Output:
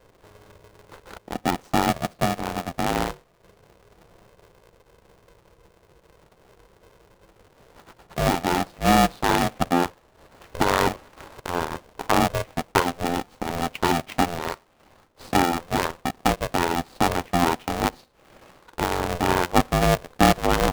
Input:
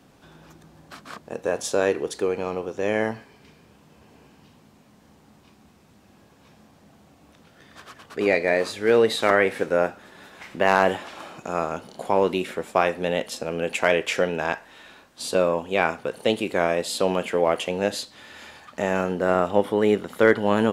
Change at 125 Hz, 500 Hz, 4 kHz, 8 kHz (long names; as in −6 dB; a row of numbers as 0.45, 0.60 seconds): +6.5, −5.5, +2.5, +3.5 decibels